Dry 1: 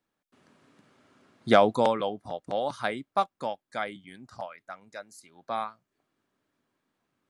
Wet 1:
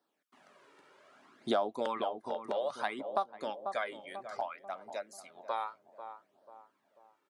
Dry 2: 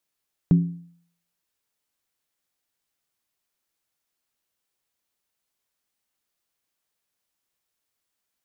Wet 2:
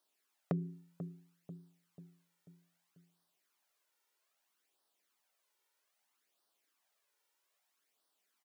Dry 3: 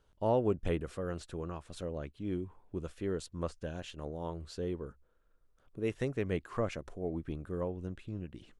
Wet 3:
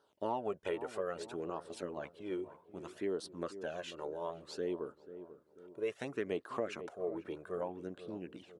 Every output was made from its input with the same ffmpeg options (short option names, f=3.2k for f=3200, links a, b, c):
-filter_complex "[0:a]highpass=310,equalizer=f=880:w=0.37:g=5,flanger=delay=0.2:depth=2:regen=-2:speed=0.62:shape=sinusoidal,asplit=2[a][b];[b]adelay=490,lowpass=f=800:p=1,volume=-13dB,asplit=2[c][d];[d]adelay=490,lowpass=f=800:p=1,volume=0.53,asplit=2[e][f];[f]adelay=490,lowpass=f=800:p=1,volume=0.53,asplit=2[g][h];[h]adelay=490,lowpass=f=800:p=1,volume=0.53,asplit=2[i][j];[j]adelay=490,lowpass=f=800:p=1,volume=0.53[k];[c][e][g][i][k]amix=inputs=5:normalize=0[l];[a][l]amix=inputs=2:normalize=0,acompressor=threshold=-34dB:ratio=3,bandreject=f=500:w=12,volume=2dB"